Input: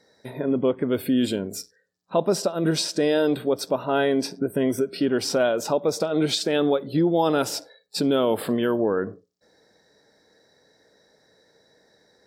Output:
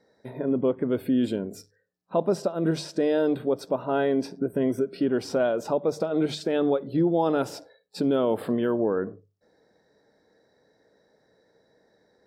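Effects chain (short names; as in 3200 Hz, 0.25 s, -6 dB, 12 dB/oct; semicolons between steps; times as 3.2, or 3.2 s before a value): high shelf 2200 Hz -12 dB; notches 50/100/150 Hz; gain -1.5 dB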